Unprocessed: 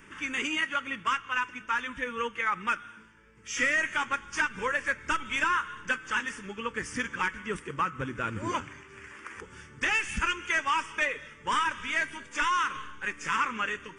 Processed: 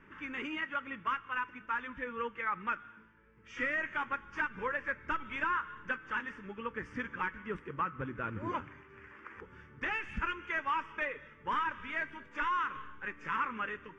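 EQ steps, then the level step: LPF 1900 Hz 12 dB/oct; -4.5 dB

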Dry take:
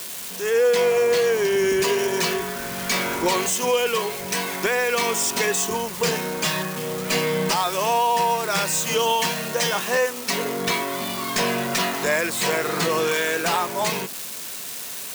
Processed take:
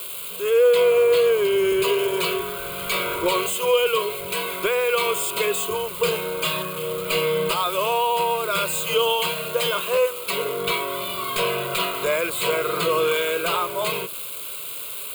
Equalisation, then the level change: notches 60/120 Hz; fixed phaser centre 1200 Hz, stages 8; +2.5 dB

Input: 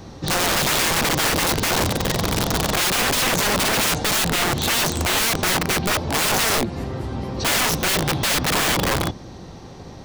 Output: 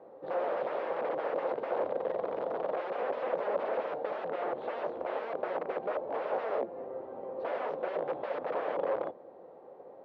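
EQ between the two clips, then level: ladder band-pass 590 Hz, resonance 60%; air absorption 250 m; +1.5 dB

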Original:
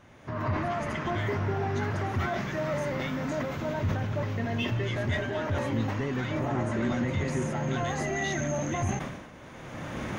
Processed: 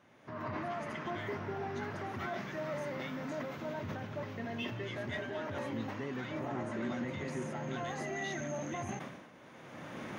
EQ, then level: HPF 160 Hz 12 dB/oct; bell 7200 Hz -4 dB 0.45 oct; -7.5 dB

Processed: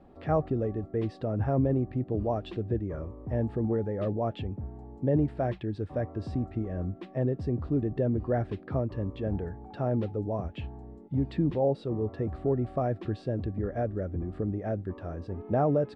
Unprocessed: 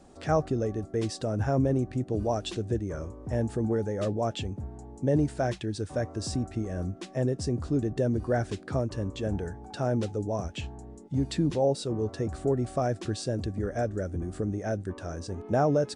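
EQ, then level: air absorption 440 m; notch 1500 Hz, Q 13; 0.0 dB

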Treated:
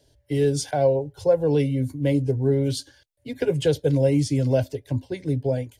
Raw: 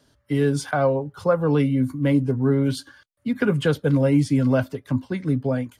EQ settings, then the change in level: dynamic EQ 6200 Hz, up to +6 dB, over -52 dBFS, Q 1.1; low shelf 290 Hz +6.5 dB; fixed phaser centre 510 Hz, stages 4; 0.0 dB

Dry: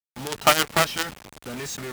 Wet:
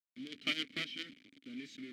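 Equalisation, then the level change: vowel filter i; bell 4300 Hz +6 dB 0.72 oct; -3.5 dB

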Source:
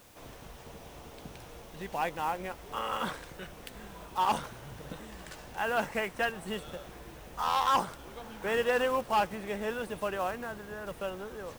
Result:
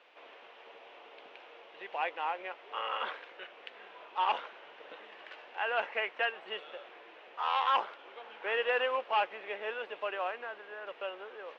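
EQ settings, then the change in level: HPF 410 Hz 24 dB/oct; synth low-pass 2800 Hz, resonance Q 2.3; air absorption 130 m; -2.5 dB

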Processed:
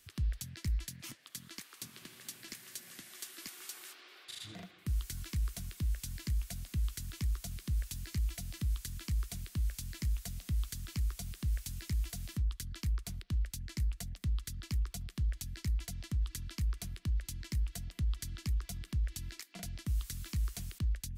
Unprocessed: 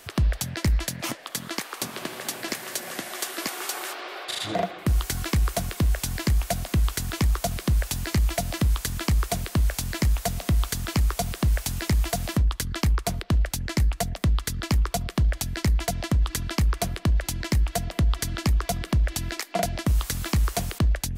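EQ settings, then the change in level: passive tone stack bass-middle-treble 6-0-2; +1.0 dB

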